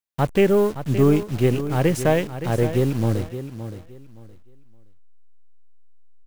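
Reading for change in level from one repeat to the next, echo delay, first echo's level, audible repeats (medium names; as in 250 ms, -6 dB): -13.0 dB, 569 ms, -11.5 dB, 2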